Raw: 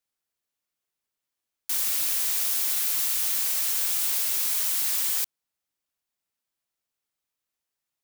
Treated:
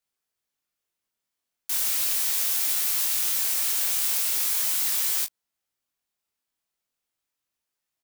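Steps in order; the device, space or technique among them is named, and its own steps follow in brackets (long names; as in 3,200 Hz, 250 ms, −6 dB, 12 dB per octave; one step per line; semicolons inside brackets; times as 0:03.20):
double-tracked vocal (double-tracking delay 21 ms −11 dB; chorus effect 0.37 Hz, delay 18 ms, depth 7.6 ms)
level +4 dB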